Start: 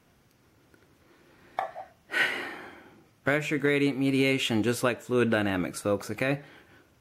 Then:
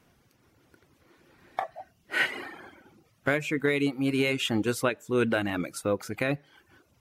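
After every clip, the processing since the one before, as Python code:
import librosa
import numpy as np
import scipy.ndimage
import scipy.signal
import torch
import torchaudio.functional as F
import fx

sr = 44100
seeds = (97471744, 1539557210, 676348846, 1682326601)

y = fx.dereverb_blind(x, sr, rt60_s=0.62)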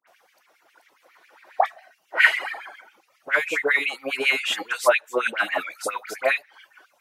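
y = fx.dispersion(x, sr, late='highs', ms=74.0, hz=1600.0)
y = fx.filter_lfo_highpass(y, sr, shape='sine', hz=7.3, low_hz=580.0, high_hz=2500.0, q=3.8)
y = y * 10.0 ** (4.0 / 20.0)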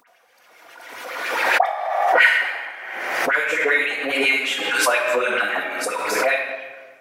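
y = fx.room_shoebox(x, sr, seeds[0], volume_m3=1500.0, walls='mixed', distance_m=1.8)
y = fx.pre_swell(y, sr, db_per_s=34.0)
y = y * 10.0 ** (-1.0 / 20.0)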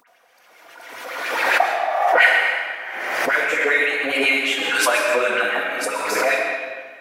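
y = fx.rev_freeverb(x, sr, rt60_s=1.3, hf_ratio=0.85, predelay_ms=85, drr_db=6.0)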